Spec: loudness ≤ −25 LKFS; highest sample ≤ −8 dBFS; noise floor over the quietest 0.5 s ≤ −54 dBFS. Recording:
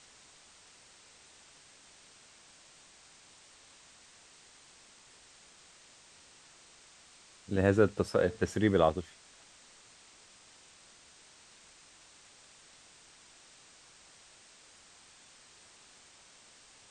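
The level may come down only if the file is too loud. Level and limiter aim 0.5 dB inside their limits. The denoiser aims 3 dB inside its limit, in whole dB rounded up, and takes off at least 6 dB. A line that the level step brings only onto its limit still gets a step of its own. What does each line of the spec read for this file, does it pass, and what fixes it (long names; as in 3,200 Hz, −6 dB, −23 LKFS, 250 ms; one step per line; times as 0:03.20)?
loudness −29.0 LKFS: in spec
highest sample −11.5 dBFS: in spec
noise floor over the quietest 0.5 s −59 dBFS: in spec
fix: no processing needed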